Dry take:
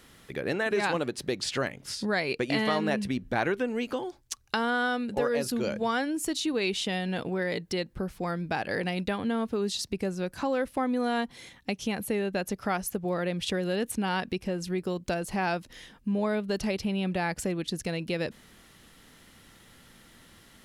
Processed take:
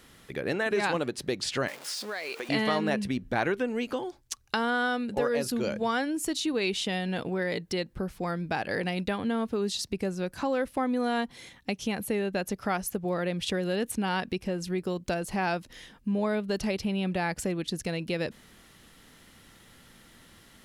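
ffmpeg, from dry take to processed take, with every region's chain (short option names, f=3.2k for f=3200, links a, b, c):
-filter_complex "[0:a]asettb=1/sr,asplit=3[a][b][c];[a]atrim=end=1.684[d];[b]atrim=start=1.68:end=2.49,asetpts=PTS-STARTPTS,afade=t=in:d=0.004:c=qsin,afade=t=out:st=0.806:d=0.004:c=qsin,aeval=exprs='val(0)+0.5*0.0158*sgn(val(0))':c=same,highpass=510,acompressor=threshold=-31dB:ratio=4:attack=3.2:release=140:knee=1:detection=peak[e];[c]atrim=start=2.486[f];[d][e]acrossfade=d=0.004:c1=hsin:c2=qsin[g];[g][f]acrossfade=d=0.004:c1=qsin:c2=hsin"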